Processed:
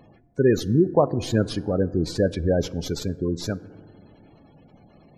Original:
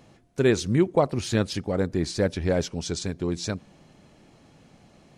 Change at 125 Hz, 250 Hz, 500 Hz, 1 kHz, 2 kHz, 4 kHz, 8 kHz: +2.5, +2.5, +2.5, +1.5, -2.5, -1.0, -3.5 dB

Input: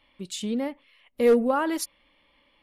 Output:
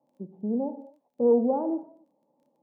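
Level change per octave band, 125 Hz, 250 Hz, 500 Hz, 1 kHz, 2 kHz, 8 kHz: n/a, -0.5 dB, -1.5 dB, -4.5 dB, under -35 dB, under -40 dB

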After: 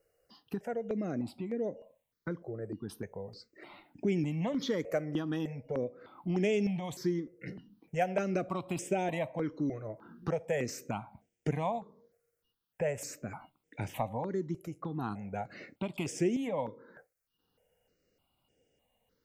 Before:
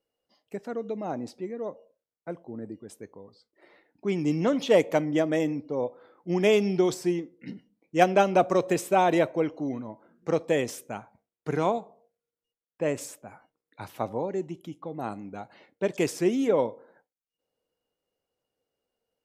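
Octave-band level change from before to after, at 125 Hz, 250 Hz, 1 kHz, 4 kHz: -1.5, -5.5, -10.0, -8.0 dB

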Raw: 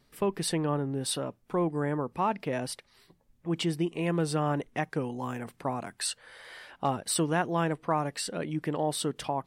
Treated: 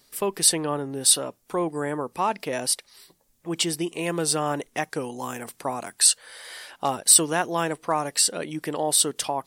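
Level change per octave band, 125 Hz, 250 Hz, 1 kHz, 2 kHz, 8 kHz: -3.5, +0.5, +4.0, +5.0, +16.5 dB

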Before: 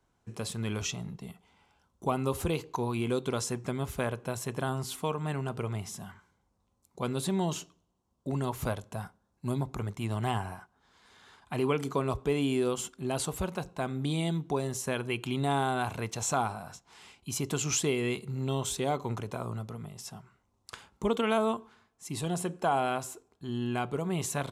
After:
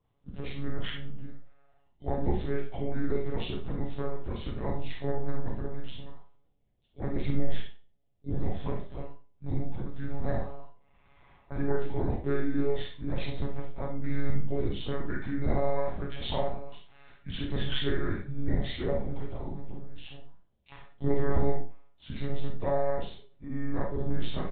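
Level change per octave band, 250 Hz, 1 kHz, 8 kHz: -1.5 dB, -7.0 dB, under -40 dB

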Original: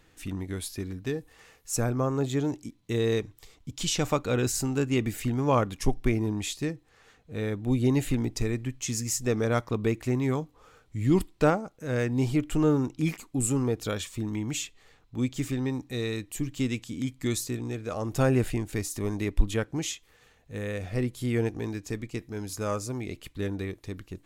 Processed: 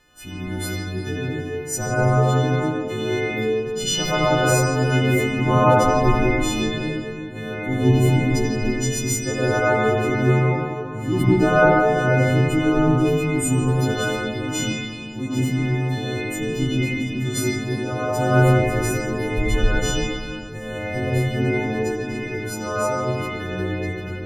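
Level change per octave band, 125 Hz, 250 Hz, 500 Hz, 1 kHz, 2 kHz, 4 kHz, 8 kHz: +9.0, +6.5, +9.0, +13.0, +14.0, +8.5, +5.5 dB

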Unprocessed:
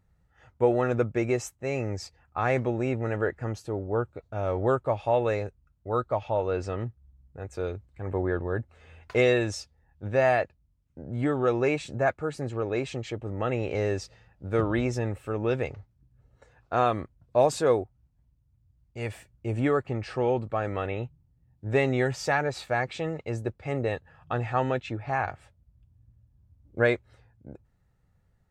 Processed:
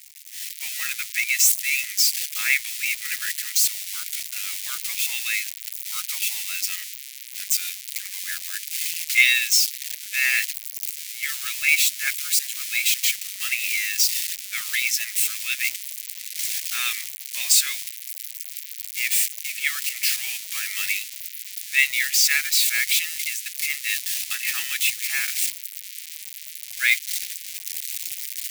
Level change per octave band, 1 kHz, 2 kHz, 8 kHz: -15.5, +11.5, +25.0 dB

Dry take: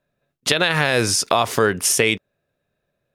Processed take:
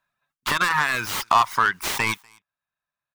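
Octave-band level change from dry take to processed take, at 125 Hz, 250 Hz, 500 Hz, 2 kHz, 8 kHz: -10.5, -11.5, -14.5, -1.0, -11.5 dB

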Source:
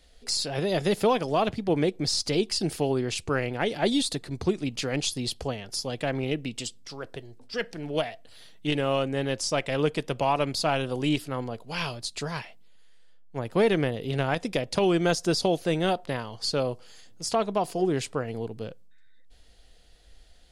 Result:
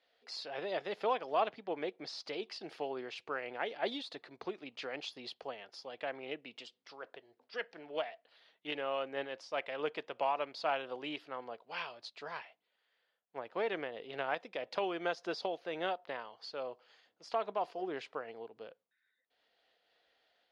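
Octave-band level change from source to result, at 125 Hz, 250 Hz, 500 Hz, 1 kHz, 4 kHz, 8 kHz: -29.0 dB, -18.5 dB, -11.0 dB, -7.5 dB, -13.5 dB, under -25 dB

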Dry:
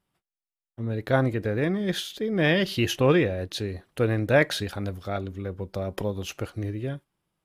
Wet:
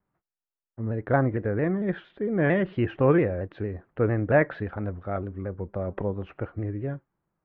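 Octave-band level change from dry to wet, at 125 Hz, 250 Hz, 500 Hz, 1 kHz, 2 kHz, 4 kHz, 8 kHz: 0.0 dB, 0.0 dB, 0.0 dB, +1.0 dB, -3.5 dB, under -20 dB, under -40 dB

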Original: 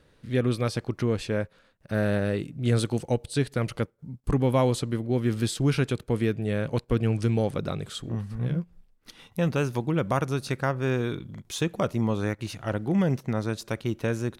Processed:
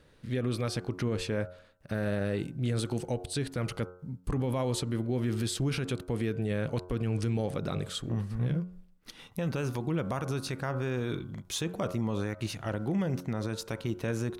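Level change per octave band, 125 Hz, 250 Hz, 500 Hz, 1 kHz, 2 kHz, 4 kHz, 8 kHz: -5.0, -5.0, -6.0, -6.5, -5.5, -2.0, -1.0 dB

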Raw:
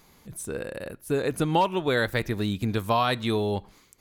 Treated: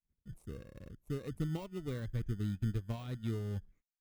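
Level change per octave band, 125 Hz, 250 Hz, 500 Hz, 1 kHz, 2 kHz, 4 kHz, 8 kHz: -5.5 dB, -11.5 dB, -19.0 dB, -28.0 dB, -24.0 dB, -22.5 dB, under -20 dB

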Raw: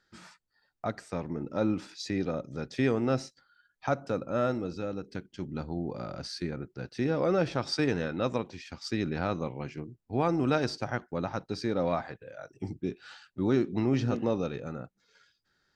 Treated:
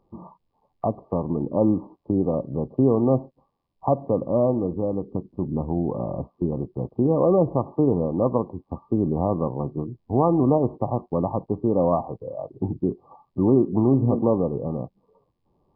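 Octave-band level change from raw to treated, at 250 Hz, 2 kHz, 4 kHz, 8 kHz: +8.5 dB, under -35 dB, under -40 dB, under -30 dB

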